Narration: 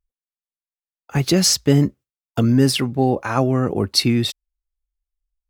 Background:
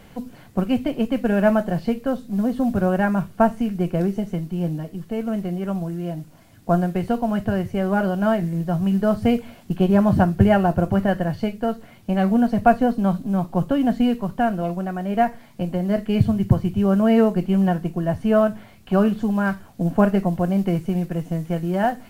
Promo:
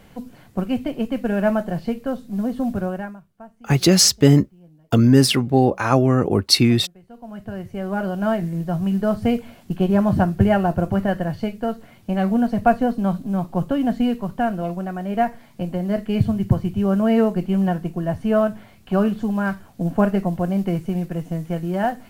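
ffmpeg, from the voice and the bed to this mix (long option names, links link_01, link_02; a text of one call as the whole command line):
ffmpeg -i stem1.wav -i stem2.wav -filter_complex "[0:a]adelay=2550,volume=2dB[link_01];[1:a]volume=22dB,afade=type=out:start_time=2.7:duration=0.5:silence=0.0707946,afade=type=in:start_time=7.08:duration=1.26:silence=0.0630957[link_02];[link_01][link_02]amix=inputs=2:normalize=0" out.wav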